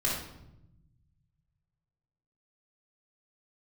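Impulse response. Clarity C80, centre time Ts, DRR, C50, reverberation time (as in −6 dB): 5.5 dB, 50 ms, −6.0 dB, 1.5 dB, 0.85 s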